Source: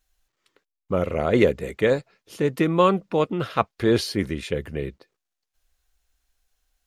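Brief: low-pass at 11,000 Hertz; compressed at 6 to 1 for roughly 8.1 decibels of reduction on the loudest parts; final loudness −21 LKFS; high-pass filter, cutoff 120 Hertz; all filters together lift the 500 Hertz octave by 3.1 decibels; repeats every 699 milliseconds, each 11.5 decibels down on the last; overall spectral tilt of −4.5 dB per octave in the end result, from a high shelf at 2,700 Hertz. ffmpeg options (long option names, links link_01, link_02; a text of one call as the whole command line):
ffmpeg -i in.wav -af "highpass=120,lowpass=11000,equalizer=frequency=500:width_type=o:gain=3.5,highshelf=frequency=2700:gain=5,acompressor=threshold=-20dB:ratio=6,aecho=1:1:699|1398|2097:0.266|0.0718|0.0194,volume=5.5dB" out.wav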